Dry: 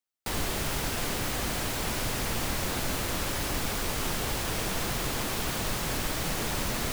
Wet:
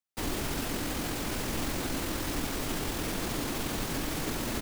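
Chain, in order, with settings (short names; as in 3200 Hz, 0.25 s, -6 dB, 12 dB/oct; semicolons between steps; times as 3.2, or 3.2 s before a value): dynamic EQ 290 Hz, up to +8 dB, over -53 dBFS, Q 1.9; tempo 1.5×; gain -3 dB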